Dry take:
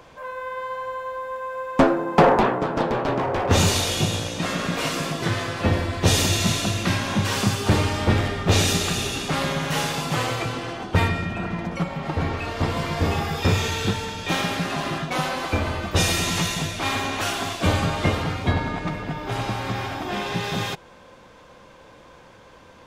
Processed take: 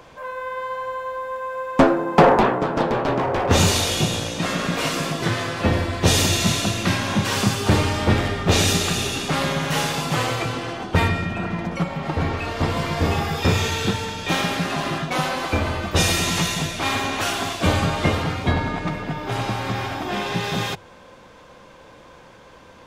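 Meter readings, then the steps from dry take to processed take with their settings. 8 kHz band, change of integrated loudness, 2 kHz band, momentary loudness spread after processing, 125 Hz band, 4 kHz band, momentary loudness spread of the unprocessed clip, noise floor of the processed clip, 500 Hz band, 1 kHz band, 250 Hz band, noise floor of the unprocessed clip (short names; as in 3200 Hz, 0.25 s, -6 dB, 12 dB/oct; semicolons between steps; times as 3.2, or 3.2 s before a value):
+2.0 dB, +2.0 dB, +2.0 dB, 9 LU, +1.0 dB, +2.0 dB, 10 LU, -46 dBFS, +2.0 dB, +2.0 dB, +2.0 dB, -48 dBFS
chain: notches 50/100 Hz; gain +2 dB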